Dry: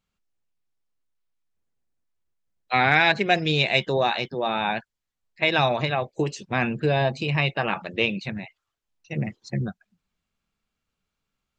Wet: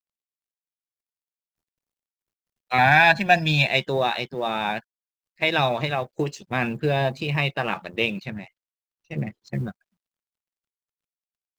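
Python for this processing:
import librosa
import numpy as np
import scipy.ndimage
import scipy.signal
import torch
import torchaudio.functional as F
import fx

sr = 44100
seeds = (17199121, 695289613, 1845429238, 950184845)

y = fx.law_mismatch(x, sr, coded='A')
y = fx.comb(y, sr, ms=1.2, depth=0.93, at=(2.78, 3.67))
y = fx.high_shelf(y, sr, hz=3900.0, db=-5.5, at=(8.19, 9.53))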